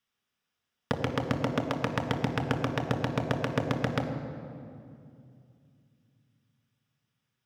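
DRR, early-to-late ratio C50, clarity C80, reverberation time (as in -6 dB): 4.0 dB, 7.5 dB, 8.5 dB, 2.5 s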